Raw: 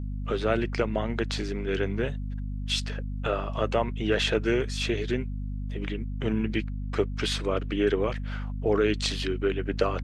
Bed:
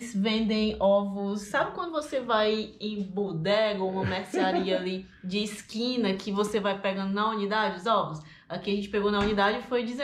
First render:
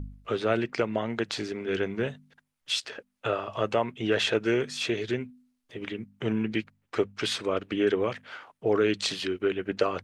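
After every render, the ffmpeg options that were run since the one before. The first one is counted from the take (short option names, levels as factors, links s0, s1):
-af "bandreject=f=50:t=h:w=4,bandreject=f=100:t=h:w=4,bandreject=f=150:t=h:w=4,bandreject=f=200:t=h:w=4,bandreject=f=250:t=h:w=4"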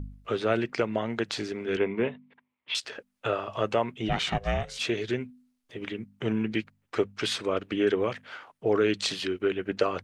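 -filter_complex "[0:a]asettb=1/sr,asplit=3[s0][s1][s2];[s0]atrim=end=1.774[s3];[s1]atrim=start=1.77:end=2.75,asetpts=PTS-STARTPTS,afade=t=in:d=0.004:c=qsin,afade=t=out:st=0.976:d=0.004:c=qsin,highpass=110,equalizer=f=150:t=q:w=4:g=-6,equalizer=f=250:t=q:w=4:g=5,equalizer=f=410:t=q:w=4:g=4,equalizer=f=990:t=q:w=4:g=8,equalizer=f=1500:t=q:w=4:g=-6,equalizer=f=2200:t=q:w=4:g=7,lowpass=f=3100:w=0.5412,lowpass=f=3100:w=1.3066[s4];[s2]atrim=start=2.746[s5];[s3][s4]acrossfade=d=0.004:c1=hsin:c2=qsin[s6];[s6][s5]acrossfade=d=0.004:c1=qsin:c2=hsin,asplit=3[s7][s8][s9];[s7]afade=t=out:st=4.08:d=0.02[s10];[s8]aeval=exprs='val(0)*sin(2*PI*290*n/s)':c=same,afade=t=in:st=4.08:d=0.02,afade=t=out:st=4.78:d=0.02[s11];[s9]afade=t=in:st=4.78:d=0.02[s12];[s10][s11][s12]amix=inputs=3:normalize=0"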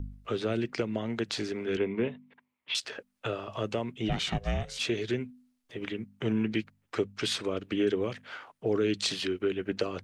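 -filter_complex "[0:a]acrossover=split=410|3000[s0][s1][s2];[s1]acompressor=threshold=0.0158:ratio=6[s3];[s0][s3][s2]amix=inputs=3:normalize=0"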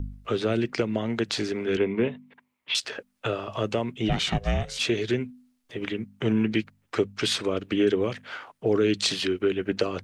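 -af "volume=1.78"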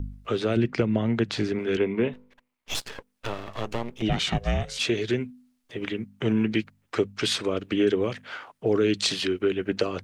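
-filter_complex "[0:a]asettb=1/sr,asplit=3[s0][s1][s2];[s0]atrim=end=0.564[s3];[s1]atrim=start=0.56:end=1.59,asetpts=PTS-STARTPTS,afade=t=in:d=0.004:c=qsin,afade=t=out:st=1.026:d=0.004:c=qsin,bass=f=250:g=7,treble=f=4000:g=-7[s4];[s2]atrim=start=1.586[s5];[s3][s4]acrossfade=d=0.004:c1=hsin:c2=qsin[s6];[s6][s5]acrossfade=d=0.004:c1=qsin:c2=hsin,asettb=1/sr,asplit=3[s7][s8][s9];[s7]atrim=end=2.134[s10];[s8]atrim=start=2.13:end=4.02,asetpts=PTS-STARTPTS,afade=t=in:d=0.004:c=qsin,afade=t=out:st=1.886:d=0.004:c=qsin,aeval=exprs='max(val(0),0)':c=same[s11];[s9]atrim=start=4.016[s12];[s10][s11]acrossfade=d=0.004:c1=hsin:c2=qsin[s13];[s13][s12]acrossfade=d=0.004:c1=qsin:c2=hsin"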